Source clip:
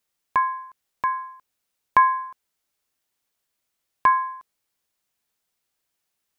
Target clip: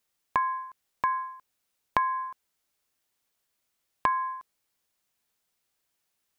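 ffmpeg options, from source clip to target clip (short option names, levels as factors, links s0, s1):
-af "acompressor=threshold=0.0794:ratio=12"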